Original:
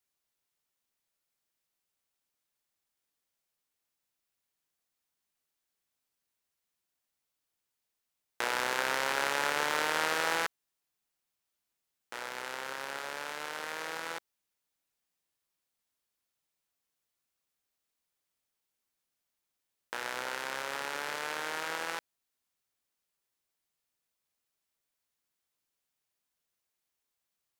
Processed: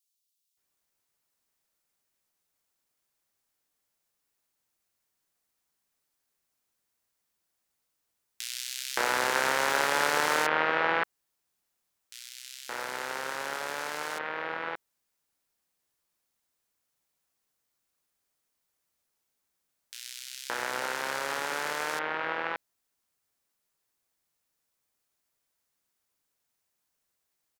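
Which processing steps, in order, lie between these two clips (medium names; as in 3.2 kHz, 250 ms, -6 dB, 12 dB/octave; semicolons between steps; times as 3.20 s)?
bands offset in time highs, lows 570 ms, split 3.1 kHz; trim +5 dB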